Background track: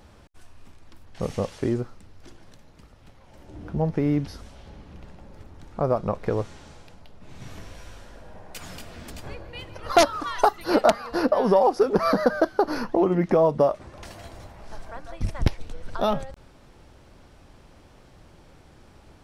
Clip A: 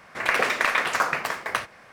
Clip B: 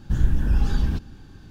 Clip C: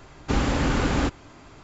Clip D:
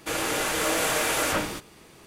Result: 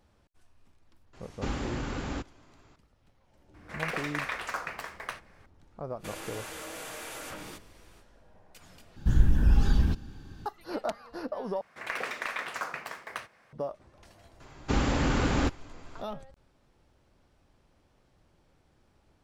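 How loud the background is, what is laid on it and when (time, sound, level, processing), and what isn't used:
background track -14.5 dB
1.13 s: add C -10.5 dB + gain riding
3.54 s: add A -11.5 dB
5.98 s: add D -8.5 dB, fades 0.05 s + compression 4:1, threshold -30 dBFS
8.96 s: replace with B -1.5 dB
11.61 s: replace with A -12 dB
14.40 s: add C -3.5 dB

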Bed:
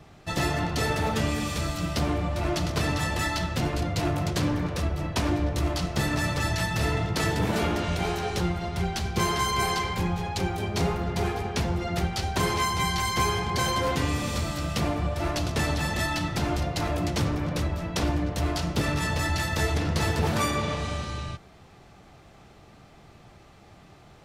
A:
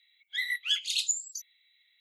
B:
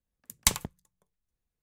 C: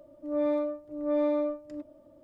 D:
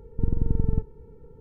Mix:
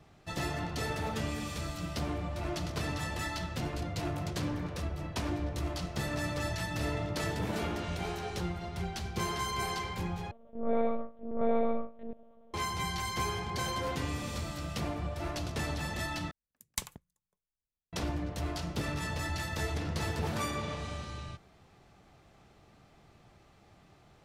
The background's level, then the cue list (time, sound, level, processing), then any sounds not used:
bed -8.5 dB
5.77 s: add C -6 dB + compression, threshold -32 dBFS
10.31 s: replace with C -0.5 dB + monotone LPC vocoder at 8 kHz 230 Hz
16.31 s: replace with B -12.5 dB
not used: A, D

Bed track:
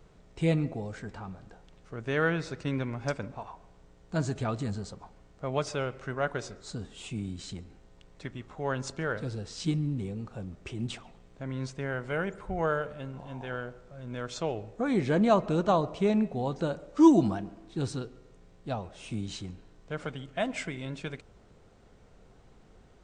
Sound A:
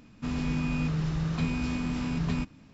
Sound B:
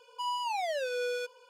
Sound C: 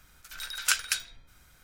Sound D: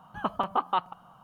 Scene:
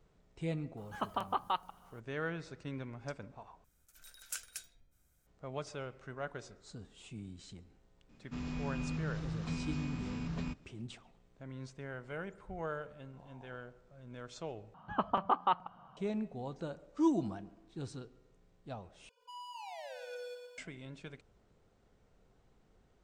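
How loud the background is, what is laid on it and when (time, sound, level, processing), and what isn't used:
bed track -11 dB
0.77 s: add D -7.5 dB + tone controls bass -2 dB, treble +13 dB
3.64 s: replace with C -13 dB + high-order bell 2.1 kHz -9 dB 2.8 oct
8.09 s: add A -9.5 dB
14.74 s: replace with D -2.5 dB + distance through air 150 m
19.09 s: replace with B -15 dB + bit-crushed delay 118 ms, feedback 55%, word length 10-bit, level -5 dB

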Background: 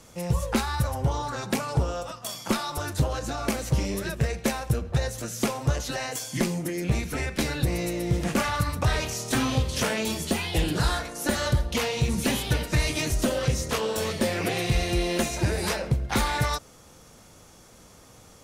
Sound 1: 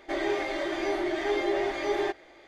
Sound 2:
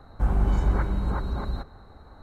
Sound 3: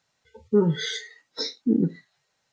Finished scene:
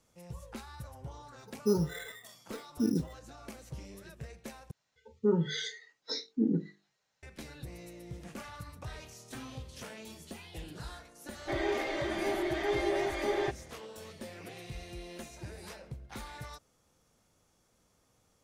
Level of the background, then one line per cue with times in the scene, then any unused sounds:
background -19.5 dB
1.13 s: add 3 -8 dB + careless resampling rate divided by 8×, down filtered, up hold
4.71 s: replace with 3 -6.5 dB + hum notches 50/100/150/200/250/300/350/400/450 Hz
11.39 s: add 1 -3.5 dB
not used: 2

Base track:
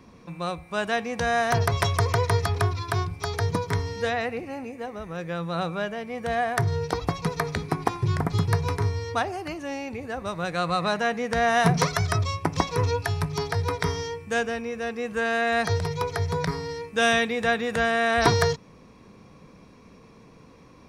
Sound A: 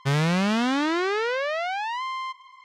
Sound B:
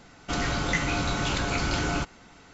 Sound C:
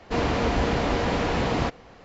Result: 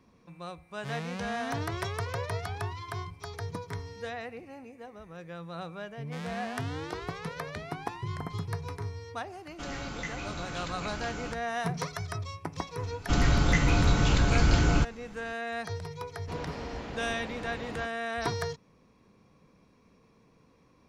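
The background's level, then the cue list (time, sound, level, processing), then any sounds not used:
base track -11.5 dB
0.78 s: add A -15 dB, fades 0.10 s
5.92 s: add A -15.5 dB + bands offset in time lows, highs 140 ms, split 450 Hz
9.30 s: add B -11 dB
12.80 s: add B -2 dB + bass shelf 180 Hz +12 dB
16.17 s: add C -15.5 dB

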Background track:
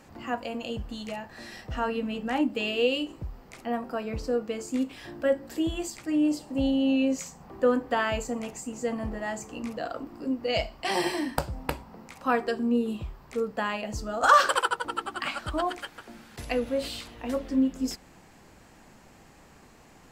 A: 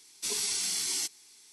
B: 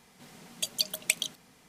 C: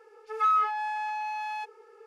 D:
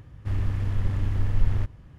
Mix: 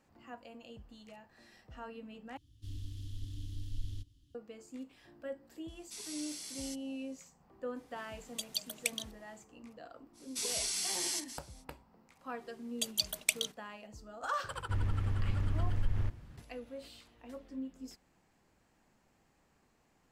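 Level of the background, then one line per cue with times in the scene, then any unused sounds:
background track -17.5 dB
2.37 s: replace with D -17 dB + FFT filter 100 Hz 0 dB, 200 Hz -14 dB, 280 Hz +8 dB, 580 Hz -28 dB, 2.3 kHz -10 dB, 3.2 kHz +14 dB
5.68 s: add A -14 dB
7.76 s: add B -8 dB
10.13 s: add A -4.5 dB, fades 0.05 s + chunks repeated in reverse 139 ms, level -11 dB
12.19 s: add B -3.5 dB + gate -49 dBFS, range -11 dB
14.44 s: add D -4.5 dB + compression 2:1, threshold -24 dBFS
not used: C

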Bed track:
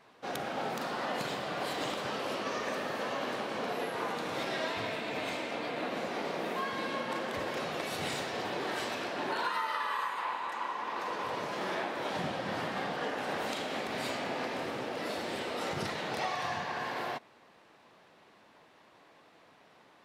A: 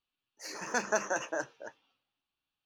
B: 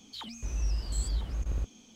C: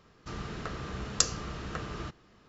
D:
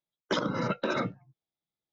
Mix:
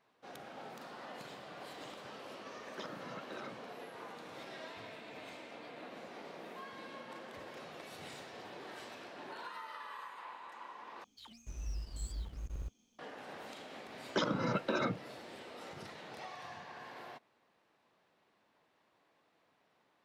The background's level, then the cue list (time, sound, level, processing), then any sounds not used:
bed track -13.5 dB
2.47 s: add D -16.5 dB + bass shelf 170 Hz -8.5 dB
11.04 s: replace with B -9 dB + companding laws mixed up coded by A
13.85 s: add D -4 dB + band-stop 1.9 kHz, Q 21
not used: A, C

